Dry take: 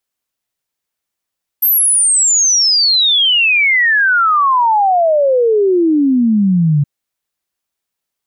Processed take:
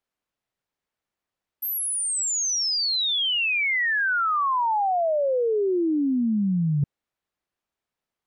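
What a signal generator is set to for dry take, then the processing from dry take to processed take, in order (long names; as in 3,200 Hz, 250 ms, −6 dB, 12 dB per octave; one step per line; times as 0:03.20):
exponential sine sweep 13,000 Hz → 140 Hz 5.22 s −8.5 dBFS
low-pass filter 1,700 Hz 6 dB per octave
reversed playback
downward compressor 5 to 1, threshold −23 dBFS
reversed playback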